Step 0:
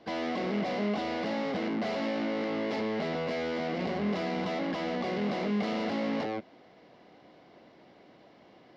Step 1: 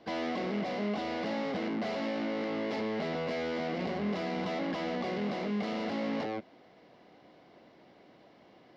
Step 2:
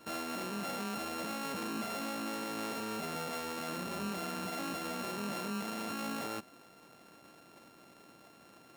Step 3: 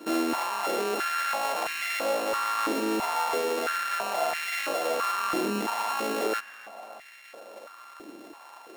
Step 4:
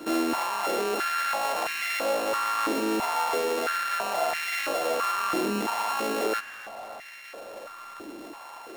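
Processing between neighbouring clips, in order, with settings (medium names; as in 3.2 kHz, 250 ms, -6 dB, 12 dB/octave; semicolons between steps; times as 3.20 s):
gain riding 0.5 s; trim -2 dB
sorted samples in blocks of 32 samples; peak limiter -31 dBFS, peak gain reduction 7.5 dB
filtered feedback delay 292 ms, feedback 65%, low-pass 2.3 kHz, level -14 dB; step-sequenced high-pass 3 Hz 310–2000 Hz; trim +7.5 dB
companding laws mixed up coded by mu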